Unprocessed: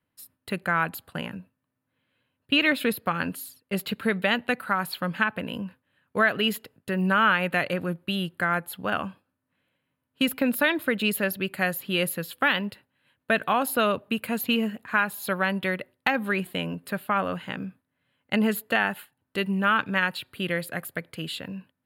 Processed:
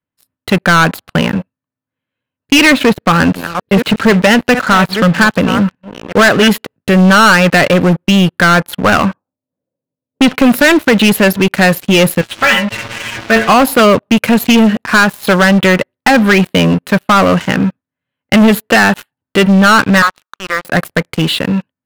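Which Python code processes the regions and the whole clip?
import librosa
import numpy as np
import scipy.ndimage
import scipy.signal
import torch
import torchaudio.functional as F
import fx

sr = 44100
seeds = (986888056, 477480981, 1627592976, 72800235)

y = fx.chain(x, sr, fx.reverse_delay(ms=604, wet_db=-13.5),
    fx.peak_eq(hz=10000.0, db=-13.0, octaves=1.5), at=(2.73, 6.48))
y = fx.chain(y, sr, fx.highpass(hz=94.0, slope=24),
    fx.air_absorb(metres=210.0),
    fx.envelope_lowpass(base_hz=520.0, top_hz=4300.0, q=2.0, full_db=-23.0, direction='up'), at=(8.81, 10.34))
y = fx.chain(y, sr, fx.zero_step(step_db=-29.0),
    fx.lowpass_res(hz=2700.0, q=2.1),
    fx.stiff_resonator(f0_hz=110.0, decay_s=0.26, stiffness=0.002), at=(12.21, 13.49))
y = fx.chain(y, sr, fx.bandpass_q(hz=1200.0, q=8.5),
    fx.leveller(passes=3), at=(20.02, 20.65))
y = fx.lowpass(y, sr, hz=3000.0, slope=6)
y = fx.leveller(y, sr, passes=5)
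y = y * 10.0 ** (4.5 / 20.0)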